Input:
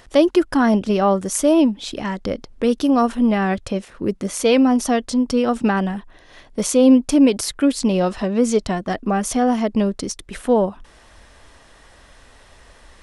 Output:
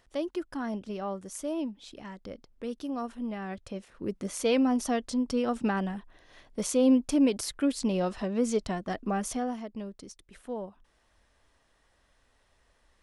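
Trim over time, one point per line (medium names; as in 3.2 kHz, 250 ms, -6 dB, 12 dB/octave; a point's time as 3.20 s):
3.42 s -18 dB
4.25 s -10 dB
9.26 s -10 dB
9.68 s -20 dB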